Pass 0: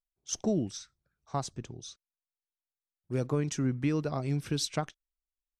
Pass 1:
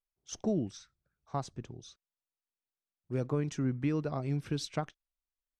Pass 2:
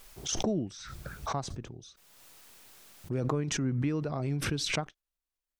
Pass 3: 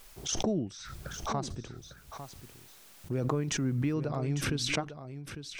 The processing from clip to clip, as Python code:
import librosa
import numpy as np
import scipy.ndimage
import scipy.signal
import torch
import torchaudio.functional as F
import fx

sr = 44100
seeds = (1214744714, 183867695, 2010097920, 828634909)

y1 = fx.high_shelf(x, sr, hz=4600.0, db=-10.5)
y1 = F.gain(torch.from_numpy(y1), -2.0).numpy()
y2 = fx.pre_swell(y1, sr, db_per_s=28.0)
y3 = y2 + 10.0 ** (-11.0 / 20.0) * np.pad(y2, (int(851 * sr / 1000.0), 0))[:len(y2)]